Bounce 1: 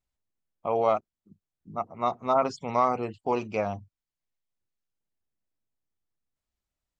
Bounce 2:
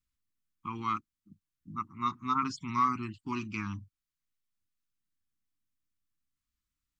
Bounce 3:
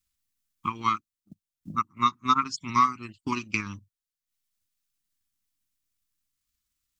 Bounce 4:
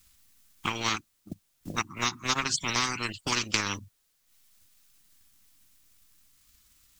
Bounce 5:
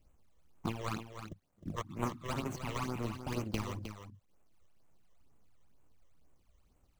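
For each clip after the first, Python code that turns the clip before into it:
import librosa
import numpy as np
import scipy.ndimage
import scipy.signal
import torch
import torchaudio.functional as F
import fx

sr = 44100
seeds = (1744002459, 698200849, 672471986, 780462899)

y1 = scipy.signal.sosfilt(scipy.signal.ellip(3, 1.0, 60, [310.0, 1100.0], 'bandstop', fs=sr, output='sos'), x)
y2 = fx.high_shelf(y1, sr, hz=2400.0, db=10.5)
y2 = fx.transient(y2, sr, attack_db=9, sustain_db=-9)
y3 = fx.spectral_comp(y2, sr, ratio=4.0)
y4 = scipy.ndimage.median_filter(y3, 25, mode='constant')
y4 = fx.phaser_stages(y4, sr, stages=12, low_hz=240.0, high_hz=4800.0, hz=2.1, feedback_pct=25)
y4 = y4 + 10.0 ** (-9.0 / 20.0) * np.pad(y4, (int(310 * sr / 1000.0), 0))[:len(y4)]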